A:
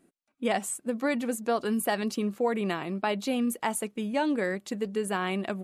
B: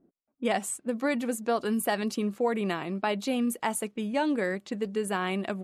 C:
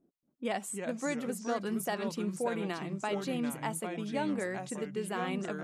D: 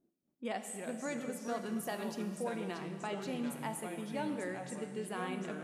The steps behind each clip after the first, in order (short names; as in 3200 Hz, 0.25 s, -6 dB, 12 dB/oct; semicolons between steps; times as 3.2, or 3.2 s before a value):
low-pass opened by the level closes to 670 Hz, open at -27.5 dBFS
echoes that change speed 0.229 s, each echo -3 st, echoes 2, each echo -6 dB; gain -6.5 dB
plate-style reverb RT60 2.1 s, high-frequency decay 1×, DRR 6.5 dB; gain -5.5 dB